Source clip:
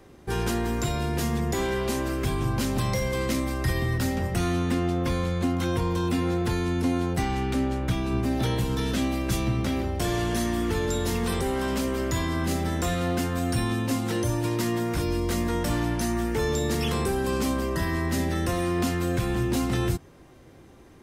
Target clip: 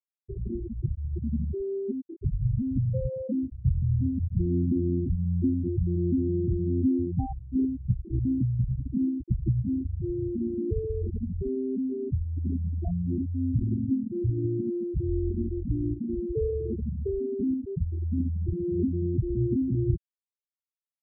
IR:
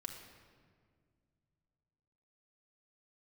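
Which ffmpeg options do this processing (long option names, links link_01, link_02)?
-filter_complex "[0:a]asplit=2[link_01][link_02];[1:a]atrim=start_sample=2205,adelay=23[link_03];[link_02][link_03]afir=irnorm=-1:irlink=0,volume=-16.5dB[link_04];[link_01][link_04]amix=inputs=2:normalize=0,afftfilt=real='re*gte(hypot(re,im),0.316)':imag='im*gte(hypot(re,im),0.316)':win_size=1024:overlap=0.75,tiltshelf=frequency=970:gain=7.5,volume=-4.5dB"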